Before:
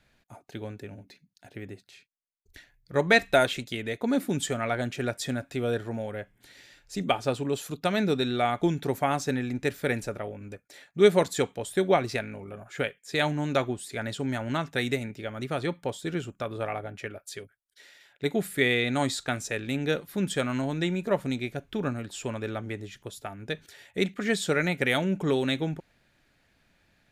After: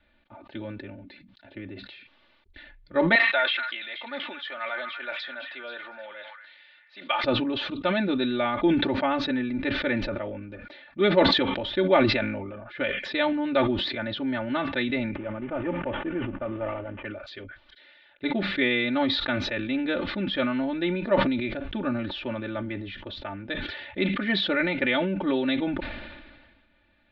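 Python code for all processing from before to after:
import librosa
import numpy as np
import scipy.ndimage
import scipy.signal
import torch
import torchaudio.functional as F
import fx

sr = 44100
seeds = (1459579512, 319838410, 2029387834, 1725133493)

y = fx.chain(x, sr, fx.highpass(hz=960.0, slope=12),
    fx.peak_eq(hz=8800.0, db=-6.5, octaves=1.2),
    fx.echo_stepped(ms=238, hz=1500.0, octaves=1.4, feedback_pct=70, wet_db=-6), at=(3.15, 7.24))
y = fx.chain(y, sr, fx.cvsd(bps=16000),
    fx.lowpass(hz=1300.0, slope=6), at=(15.15, 17.05))
y = scipy.signal.sosfilt(scipy.signal.butter(8, 3900.0, 'lowpass', fs=sr, output='sos'), y)
y = y + 0.96 * np.pad(y, (int(3.4 * sr / 1000.0), 0))[:len(y)]
y = fx.sustainer(y, sr, db_per_s=38.0)
y = y * 10.0 ** (-2.0 / 20.0)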